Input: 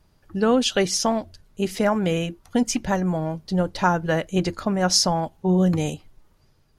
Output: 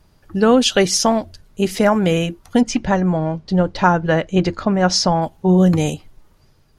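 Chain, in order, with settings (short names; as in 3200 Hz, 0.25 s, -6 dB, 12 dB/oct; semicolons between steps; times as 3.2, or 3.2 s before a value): 2.61–5.22 air absorption 100 m; gain +6 dB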